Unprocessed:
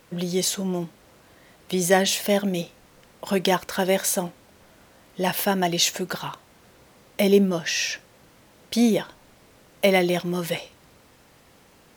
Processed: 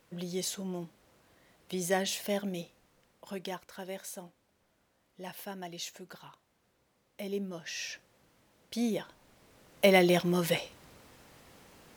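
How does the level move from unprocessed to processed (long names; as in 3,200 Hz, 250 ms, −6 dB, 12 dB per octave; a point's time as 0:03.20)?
0:02.51 −11 dB
0:03.70 −19.5 dB
0:07.25 −19.5 dB
0:07.90 −12.5 dB
0:08.79 −12.5 dB
0:10.12 −2 dB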